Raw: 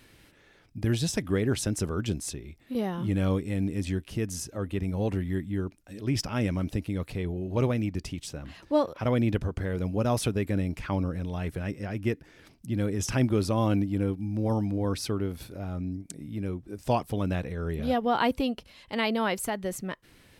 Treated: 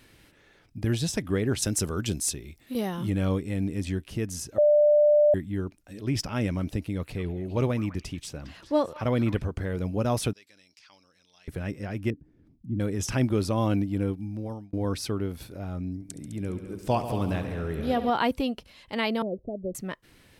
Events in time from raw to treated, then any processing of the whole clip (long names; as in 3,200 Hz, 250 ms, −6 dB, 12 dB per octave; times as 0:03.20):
0:01.62–0:03.10: high-shelf EQ 3,800 Hz +10 dB
0:04.58–0:05.34: beep over 594 Hz −15.5 dBFS
0:06.79–0:09.45: echo through a band-pass that steps 203 ms, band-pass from 1,400 Hz, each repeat 1.4 octaves, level −9 dB
0:10.33–0:11.48: resonant band-pass 5,100 Hz, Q 3
0:12.10–0:12.80: drawn EQ curve 290 Hz 0 dB, 480 Hz −14 dB, 2,900 Hz −29 dB
0:14.11–0:14.73: fade out
0:15.95–0:18.10: echo machine with several playback heads 69 ms, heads all three, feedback 51%, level −13.5 dB
0:19.22–0:19.75: Chebyshev low-pass filter 630 Hz, order 5